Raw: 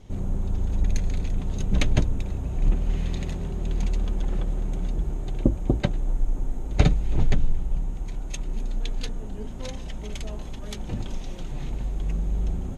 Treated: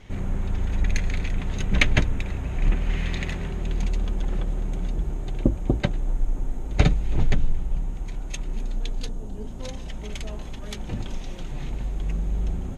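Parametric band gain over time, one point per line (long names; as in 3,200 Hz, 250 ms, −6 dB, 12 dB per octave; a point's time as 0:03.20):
parametric band 2,000 Hz 1.5 octaves
0:03.43 +13 dB
0:03.83 +3.5 dB
0:08.62 +3.5 dB
0:09.18 −7 dB
0:10.07 +3.5 dB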